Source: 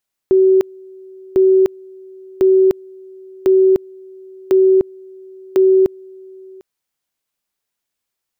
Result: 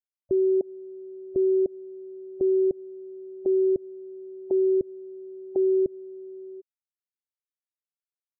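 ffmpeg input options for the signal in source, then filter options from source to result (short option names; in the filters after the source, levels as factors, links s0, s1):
-f lavfi -i "aevalsrc='pow(10,(-7.5-27*gte(mod(t,1.05),0.3))/20)*sin(2*PI*379*t)':d=6.3:s=44100"
-af "afftfilt=real='re*gte(hypot(re,im),0.126)':imag='im*gte(hypot(re,im),0.126)':win_size=1024:overlap=0.75,alimiter=limit=0.126:level=0:latency=1:release=88"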